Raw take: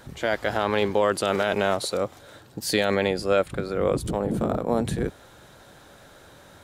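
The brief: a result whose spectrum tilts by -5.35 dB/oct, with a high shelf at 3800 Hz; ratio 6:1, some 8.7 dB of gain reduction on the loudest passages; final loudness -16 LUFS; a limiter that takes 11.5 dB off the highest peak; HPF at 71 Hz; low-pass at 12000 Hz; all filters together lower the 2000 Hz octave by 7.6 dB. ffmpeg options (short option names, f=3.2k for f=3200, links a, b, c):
-af "highpass=71,lowpass=12k,equalizer=f=2k:t=o:g=-8.5,highshelf=f=3.8k:g=-8,acompressor=threshold=-27dB:ratio=6,volume=22dB,alimiter=limit=-5.5dB:level=0:latency=1"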